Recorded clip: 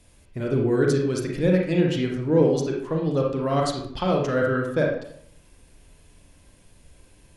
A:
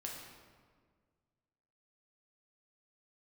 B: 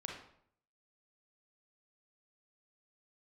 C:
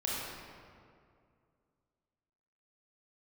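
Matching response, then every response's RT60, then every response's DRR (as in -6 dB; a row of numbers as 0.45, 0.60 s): B; 1.7, 0.65, 2.3 s; -2.0, -0.5, -6.0 dB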